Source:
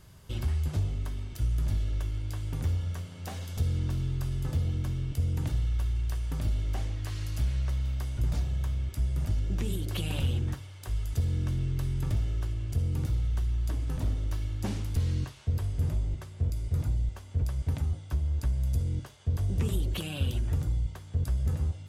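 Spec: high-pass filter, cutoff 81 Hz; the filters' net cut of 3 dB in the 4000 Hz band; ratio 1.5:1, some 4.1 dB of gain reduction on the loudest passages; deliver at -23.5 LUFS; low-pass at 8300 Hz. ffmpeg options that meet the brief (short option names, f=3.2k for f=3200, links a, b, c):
-af "highpass=81,lowpass=8.3k,equalizer=f=4k:t=o:g=-4,acompressor=threshold=-37dB:ratio=1.5,volume=14dB"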